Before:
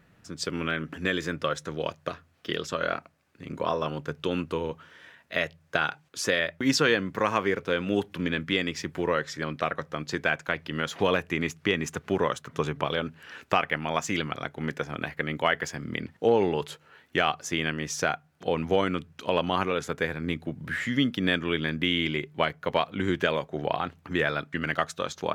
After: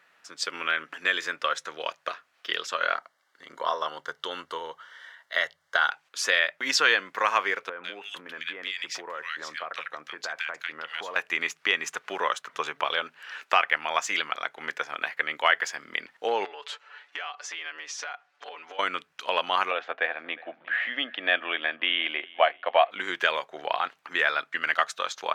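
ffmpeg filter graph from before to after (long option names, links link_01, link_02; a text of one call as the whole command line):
ffmpeg -i in.wav -filter_complex "[0:a]asettb=1/sr,asplit=3[link_01][link_02][link_03];[link_01]atrim=end=2.944[link_04];[link_02]atrim=start=2.94:end=5.91,asetpts=PTS-STARTPTS,afade=type=in:duration=0.004:curve=qsin,afade=type=out:start_time=2.966:duration=0.004:curve=qsin,asubboost=boost=9:cutoff=91,asuperstop=centerf=2500:order=4:qfactor=4[link_05];[link_03]atrim=start=5.906[link_06];[link_04][link_05]acrossfade=duration=0.004:curve1=hsin:curve2=qsin[link_07];[link_07][link_06]acrossfade=duration=0.004:curve1=qsin:curve2=hsin,asettb=1/sr,asplit=3[link_08][link_09][link_10];[link_08]atrim=end=7.694[link_11];[link_09]atrim=start=7.69:end=11.16,asetpts=PTS-STARTPTS,afade=type=in:duration=0.004:curve=qsin,afade=type=out:start_time=3.466:duration=0.004:curve=qsin,acrossover=split=1700[link_12][link_13];[link_13]adelay=150[link_14];[link_12][link_14]amix=inputs=2:normalize=0,atrim=end_sample=153027,acompressor=threshold=-31dB:ratio=4:attack=3.2:release=140:knee=1:detection=peak[link_15];[link_10]atrim=start=11.156[link_16];[link_11][link_15]acrossfade=duration=0.004:curve1=hsin:curve2=qsin[link_17];[link_17][link_16]acrossfade=duration=0.004:curve1=qsin:curve2=hsin,asettb=1/sr,asplit=3[link_18][link_19][link_20];[link_18]atrim=end=16.454[link_21];[link_19]atrim=start=16.45:end=18.79,asetpts=PTS-STARTPTS,afade=type=in:duration=0.004:curve=qsin,afade=type=out:start_time=2.336:duration=0.004:curve=qsin,acompressor=threshold=-35dB:ratio=8:attack=3.2:release=140:knee=1:detection=peak,highpass=370,lowpass=6100,aecho=1:1:6.9:0.92,atrim=end_sample=103194[link_22];[link_20]atrim=start=18.786[link_23];[link_21][link_22]acrossfade=duration=0.004:curve1=hsin:curve2=qsin[link_24];[link_24][link_23]acrossfade=duration=0.004:curve1=qsin:curve2=hsin,asettb=1/sr,asplit=3[link_25][link_26][link_27];[link_25]atrim=end=19.714[link_28];[link_26]atrim=start=19.71:end=22.91,asetpts=PTS-STARTPTS,afade=type=in:duration=0.004:curve=qsin,afade=type=out:start_time=3.196:duration=0.004:curve=qsin,acontrast=33,highpass=350,equalizer=frequency=420:width_type=q:width=4:gain=-8,equalizer=frequency=690:width_type=q:width=4:gain=8,equalizer=frequency=980:width_type=q:width=4:gain=-7,equalizer=frequency=1400:width_type=q:width=4:gain=-8,equalizer=frequency=2100:width_type=q:width=4:gain=-8,lowpass=frequency=2700:width=0.5412,lowpass=frequency=2700:width=1.3066,aecho=1:1:359|718:0.0794|0.0246,atrim=end_sample=141120[link_29];[link_27]atrim=start=22.906[link_30];[link_28][link_29]acrossfade=duration=0.004:curve1=hsin:curve2=qsin[link_31];[link_31][link_30]acrossfade=duration=0.004:curve1=qsin:curve2=hsin,highpass=920,highshelf=frequency=7600:gain=-9,volume=5.5dB" out.wav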